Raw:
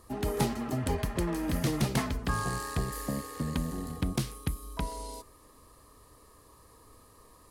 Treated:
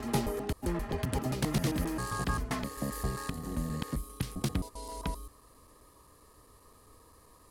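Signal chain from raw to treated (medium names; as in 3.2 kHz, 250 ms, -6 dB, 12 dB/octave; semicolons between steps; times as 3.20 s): slices played last to first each 132 ms, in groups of 5; trim -1.5 dB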